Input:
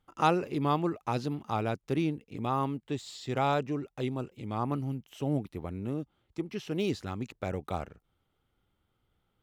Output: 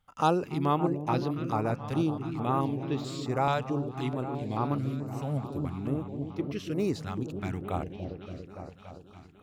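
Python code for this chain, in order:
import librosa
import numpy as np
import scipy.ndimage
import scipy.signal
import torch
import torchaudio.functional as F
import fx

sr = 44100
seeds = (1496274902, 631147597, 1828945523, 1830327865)

y = fx.echo_opening(x, sr, ms=285, hz=400, octaves=1, feedback_pct=70, wet_db=-6)
y = fx.filter_held_notch(y, sr, hz=4.6, low_hz=340.0, high_hz=7900.0)
y = y * 10.0 ** (1.5 / 20.0)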